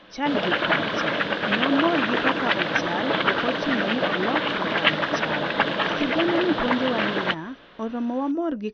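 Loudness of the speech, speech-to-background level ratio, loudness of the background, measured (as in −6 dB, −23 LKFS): −28.5 LKFS, −5.0 dB, −23.5 LKFS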